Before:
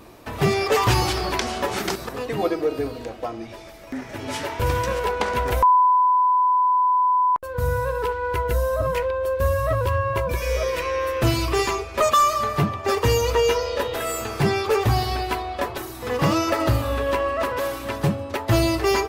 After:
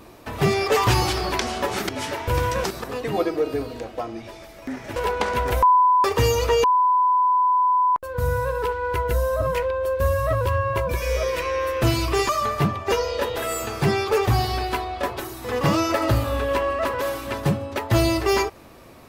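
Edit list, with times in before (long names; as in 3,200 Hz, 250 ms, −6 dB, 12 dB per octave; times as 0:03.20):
0:04.21–0:04.96: move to 0:01.89
0:11.69–0:12.27: remove
0:12.90–0:13.50: move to 0:06.04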